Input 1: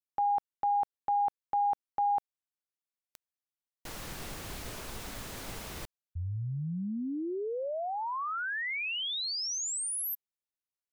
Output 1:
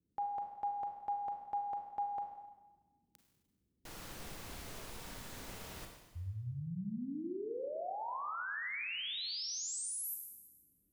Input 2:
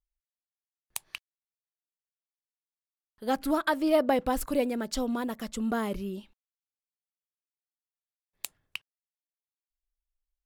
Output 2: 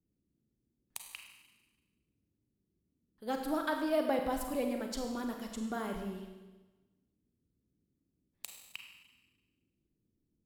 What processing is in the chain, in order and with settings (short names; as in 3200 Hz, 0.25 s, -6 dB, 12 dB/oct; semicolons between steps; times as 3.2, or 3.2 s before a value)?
band noise 39–310 Hz -74 dBFS; Schroeder reverb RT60 1.2 s, combs from 33 ms, DRR 3 dB; gain -8 dB